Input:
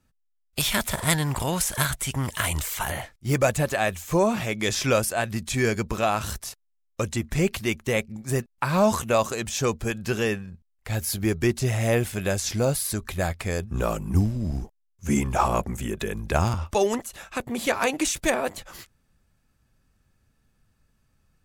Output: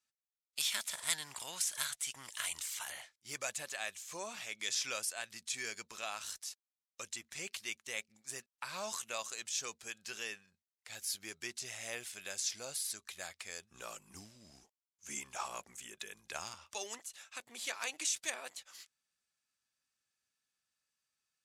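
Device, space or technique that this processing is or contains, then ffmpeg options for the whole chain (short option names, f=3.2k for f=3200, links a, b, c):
piezo pickup straight into a mixer: -af "lowpass=6.3k,aderivative,volume=-2dB"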